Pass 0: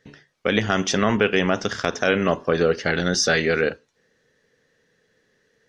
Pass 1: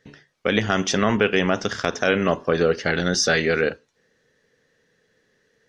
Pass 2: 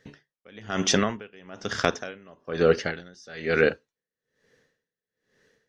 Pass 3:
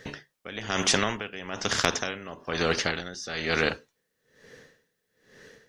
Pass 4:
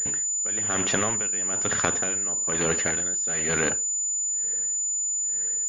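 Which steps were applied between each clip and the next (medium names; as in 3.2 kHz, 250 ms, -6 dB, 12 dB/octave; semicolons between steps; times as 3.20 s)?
no audible change
logarithmic tremolo 1.1 Hz, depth 31 dB; trim +1.5 dB
spectrum-flattening compressor 2:1
coarse spectral quantiser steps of 15 dB; class-D stage that switches slowly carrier 7 kHz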